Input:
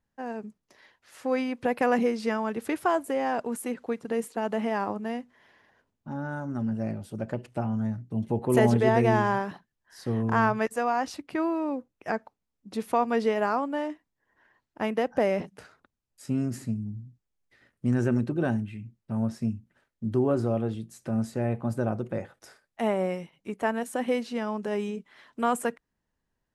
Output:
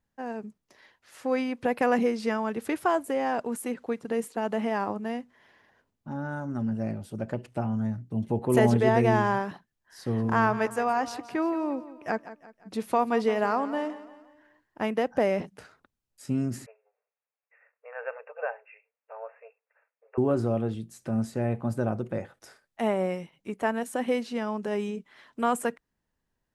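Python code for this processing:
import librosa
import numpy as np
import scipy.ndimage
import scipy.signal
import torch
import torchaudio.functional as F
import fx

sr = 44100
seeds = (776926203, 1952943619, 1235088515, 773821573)

y = fx.echo_feedback(x, sr, ms=173, feedback_pct=45, wet_db=-15, at=(10.17, 14.81), fade=0.02)
y = fx.brickwall_bandpass(y, sr, low_hz=430.0, high_hz=2800.0, at=(16.66, 20.18))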